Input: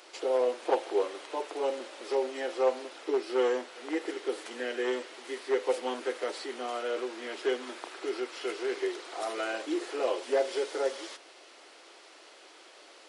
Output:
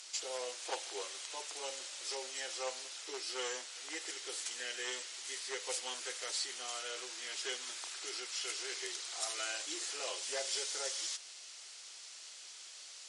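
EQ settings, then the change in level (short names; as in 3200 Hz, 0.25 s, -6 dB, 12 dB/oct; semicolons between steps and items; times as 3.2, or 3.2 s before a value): band-pass 7000 Hz, Q 1.7; +12.0 dB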